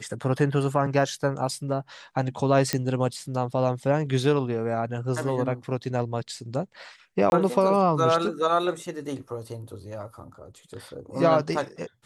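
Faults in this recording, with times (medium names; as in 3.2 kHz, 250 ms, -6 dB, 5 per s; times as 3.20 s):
2.73 s: pop -9 dBFS
7.30–7.32 s: dropout 21 ms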